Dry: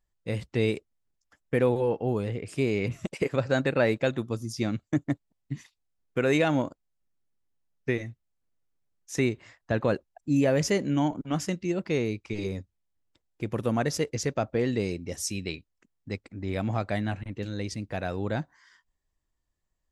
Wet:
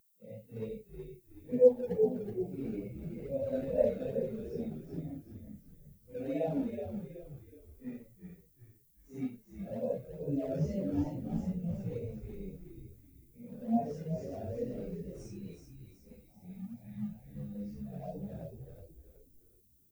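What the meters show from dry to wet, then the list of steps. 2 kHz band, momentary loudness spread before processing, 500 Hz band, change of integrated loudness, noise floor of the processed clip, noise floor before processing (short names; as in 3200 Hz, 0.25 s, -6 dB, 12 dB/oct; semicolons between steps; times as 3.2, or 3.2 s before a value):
-26.5 dB, 12 LU, -5.0 dB, -7.0 dB, -65 dBFS, -80 dBFS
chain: phase scrambler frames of 0.2 s; spectral repair 16.31–17.17, 270–1400 Hz after; high shelf 2100 Hz -5.5 dB; fixed phaser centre 350 Hz, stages 6; in parallel at -6 dB: decimation with a swept rate 25×, swing 160% 2.3 Hz; on the sum: flange 0.34 Hz, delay 9.9 ms, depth 2.7 ms, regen -37%; added noise violet -48 dBFS; on a send: frequency-shifting echo 0.373 s, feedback 54%, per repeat -66 Hz, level -4.5 dB; on the sum: spectral expander 1.5:1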